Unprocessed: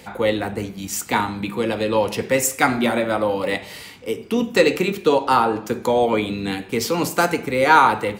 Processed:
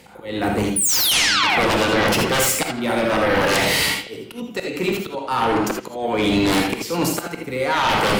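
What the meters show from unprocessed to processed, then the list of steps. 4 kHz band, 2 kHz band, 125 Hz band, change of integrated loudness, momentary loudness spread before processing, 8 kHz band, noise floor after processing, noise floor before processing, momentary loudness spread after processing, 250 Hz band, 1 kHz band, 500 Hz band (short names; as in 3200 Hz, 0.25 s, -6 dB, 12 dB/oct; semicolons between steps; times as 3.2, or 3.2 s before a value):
+9.0 dB, +2.5 dB, +2.5 dB, +1.5 dB, 10 LU, +6.5 dB, -37 dBFS, -40 dBFS, 11 LU, +1.0 dB, -2.0 dB, -2.0 dB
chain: gate with hold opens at -27 dBFS; painted sound fall, 0.76–1.58, 620–10000 Hz -15 dBFS; reverse; compressor 10:1, threshold -27 dBFS, peak gain reduction 19 dB; reverse; auto swell 0.739 s; sine folder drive 15 dB, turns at -16 dBFS; on a send: narrowing echo 83 ms, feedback 53%, band-pass 2900 Hz, level -13 dB; on the sum: non-linear reverb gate 0.1 s rising, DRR 3 dB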